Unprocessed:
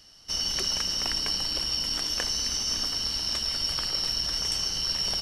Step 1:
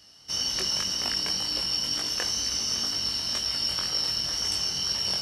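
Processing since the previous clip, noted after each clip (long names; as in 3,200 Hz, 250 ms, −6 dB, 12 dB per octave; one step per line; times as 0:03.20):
high-pass filter 70 Hz 12 dB per octave
chorus effect 2 Hz, delay 19.5 ms, depth 3.2 ms
level +3.5 dB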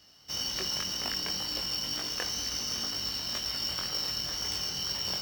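running median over 5 samples
level −2.5 dB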